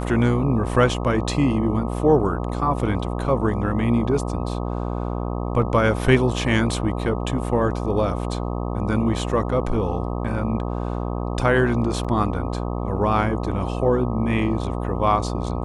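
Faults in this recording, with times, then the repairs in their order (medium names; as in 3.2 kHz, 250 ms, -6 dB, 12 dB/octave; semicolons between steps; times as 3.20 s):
buzz 60 Hz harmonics 21 -26 dBFS
12.04–12.05 s: dropout 6.3 ms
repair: de-hum 60 Hz, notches 21; interpolate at 12.04 s, 6.3 ms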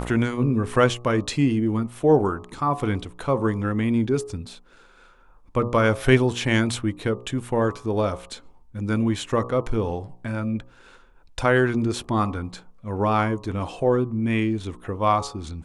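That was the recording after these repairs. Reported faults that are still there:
nothing left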